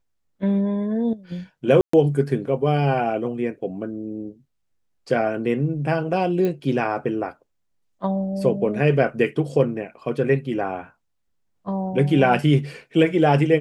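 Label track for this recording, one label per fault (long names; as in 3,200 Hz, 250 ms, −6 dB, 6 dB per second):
1.810000	1.930000	drop-out 124 ms
6.450000	6.450000	click −14 dBFS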